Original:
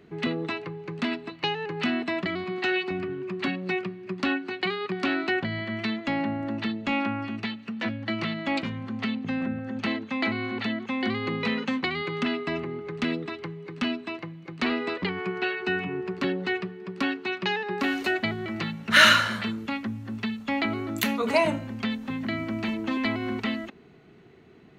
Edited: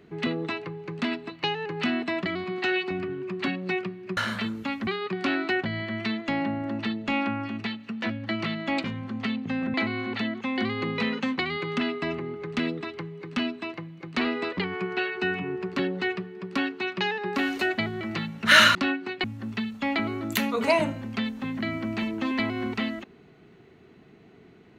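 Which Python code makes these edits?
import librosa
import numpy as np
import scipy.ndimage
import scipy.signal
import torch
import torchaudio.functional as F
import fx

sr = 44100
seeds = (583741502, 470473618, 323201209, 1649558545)

y = fx.edit(x, sr, fx.swap(start_s=4.17, length_s=0.49, other_s=19.2, other_length_s=0.7),
    fx.cut(start_s=9.53, length_s=0.66), tone=tone)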